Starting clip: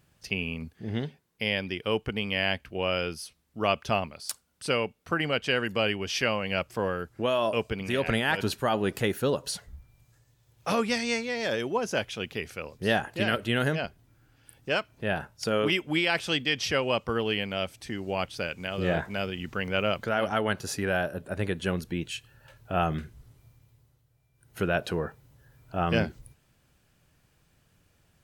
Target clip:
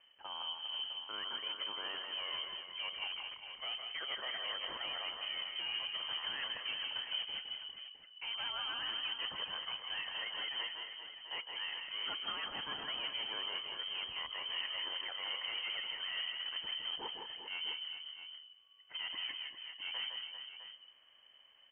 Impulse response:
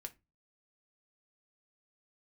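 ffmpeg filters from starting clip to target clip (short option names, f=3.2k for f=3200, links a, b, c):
-filter_complex "[0:a]areverse,acompressor=threshold=-35dB:ratio=5,areverse,atempo=1.3,aeval=exprs='(tanh(79.4*val(0)+0.3)-tanh(0.3))/79.4':c=same,afreqshift=-290,asplit=2[a][b];[b]aecho=0:1:160|188|365|399|658:0.531|0.282|0.126|0.335|0.282[c];[a][c]amix=inputs=2:normalize=0,lowpass=f=2.7k:t=q:w=0.5098,lowpass=f=2.7k:t=q:w=0.6013,lowpass=f=2.7k:t=q:w=0.9,lowpass=f=2.7k:t=q:w=2.563,afreqshift=-3200,volume=1dB"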